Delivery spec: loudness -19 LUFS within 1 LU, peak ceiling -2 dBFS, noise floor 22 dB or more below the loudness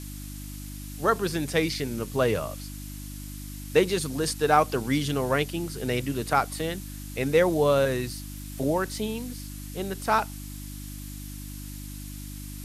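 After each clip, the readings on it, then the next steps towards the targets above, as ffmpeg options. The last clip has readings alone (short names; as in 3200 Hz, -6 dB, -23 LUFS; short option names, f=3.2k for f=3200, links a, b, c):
hum 50 Hz; harmonics up to 300 Hz; hum level -37 dBFS; noise floor -38 dBFS; noise floor target -49 dBFS; loudness -26.5 LUFS; peak -7.0 dBFS; loudness target -19.0 LUFS
-> -af "bandreject=f=50:t=h:w=4,bandreject=f=100:t=h:w=4,bandreject=f=150:t=h:w=4,bandreject=f=200:t=h:w=4,bandreject=f=250:t=h:w=4,bandreject=f=300:t=h:w=4"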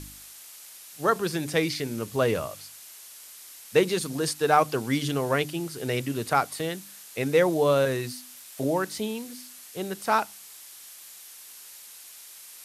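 hum none; noise floor -47 dBFS; noise floor target -49 dBFS
-> -af "afftdn=nr=6:nf=-47"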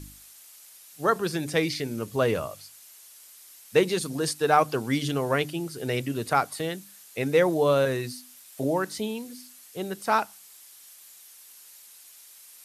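noise floor -51 dBFS; loudness -26.5 LUFS; peak -7.0 dBFS; loudness target -19.0 LUFS
-> -af "volume=7.5dB,alimiter=limit=-2dB:level=0:latency=1"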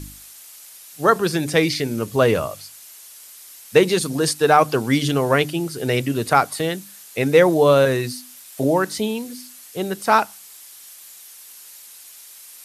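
loudness -19.0 LUFS; peak -2.0 dBFS; noise floor -43 dBFS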